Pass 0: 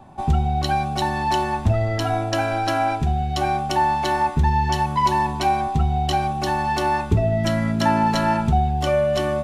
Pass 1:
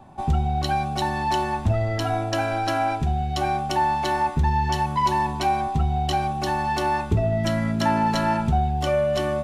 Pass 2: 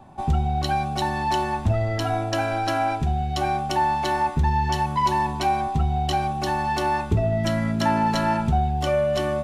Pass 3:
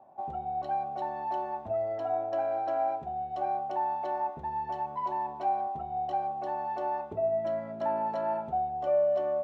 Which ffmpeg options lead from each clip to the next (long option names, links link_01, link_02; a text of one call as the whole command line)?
ffmpeg -i in.wav -af "acontrast=42,volume=-7.5dB" out.wav
ffmpeg -i in.wav -af anull out.wav
ffmpeg -i in.wav -af "bandpass=frequency=640:width_type=q:width=3:csg=0,volume=-2dB" out.wav